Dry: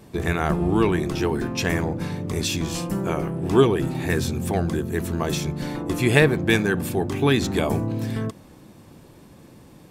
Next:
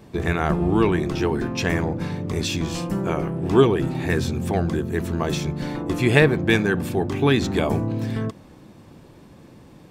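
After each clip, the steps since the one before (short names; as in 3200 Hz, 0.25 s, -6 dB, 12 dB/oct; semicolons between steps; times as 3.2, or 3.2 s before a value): bell 12000 Hz -8.5 dB 1.3 oct; gain +1 dB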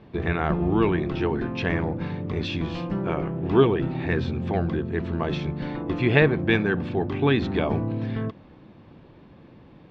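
LPF 3700 Hz 24 dB/oct; gain -2.5 dB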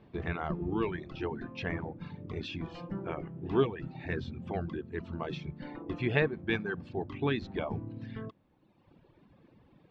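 reverb removal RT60 1.4 s; gain -8.5 dB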